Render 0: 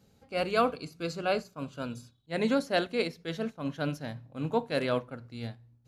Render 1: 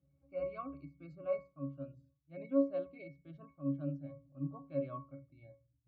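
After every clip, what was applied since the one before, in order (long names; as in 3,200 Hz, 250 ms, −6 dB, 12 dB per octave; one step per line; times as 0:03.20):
gate on every frequency bin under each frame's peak −30 dB strong
resonances in every octave C#, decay 0.29 s
level +2 dB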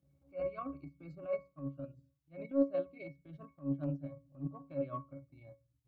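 transient designer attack −10 dB, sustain −6 dB
level +4.5 dB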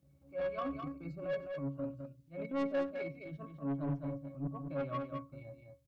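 soft clipping −36.5 dBFS, distortion −6 dB
on a send: multi-tap delay 94/209 ms −19.5/−6 dB
on the sum: level +5 dB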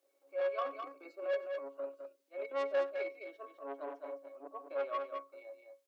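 Butterworth high-pass 370 Hz 48 dB per octave
level +2.5 dB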